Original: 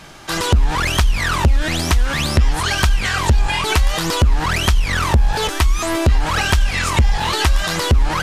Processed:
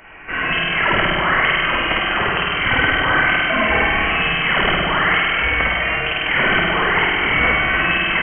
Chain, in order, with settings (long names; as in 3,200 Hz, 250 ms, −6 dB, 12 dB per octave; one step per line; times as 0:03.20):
high-pass filter 900 Hz 6 dB per octave
on a send: ambience of single reflections 25 ms −7.5 dB, 57 ms −6 dB
on the sum: spring reverb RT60 2.3 s, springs 49 ms, chirp 55 ms, DRR −5 dB
voice inversion scrambler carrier 3,100 Hz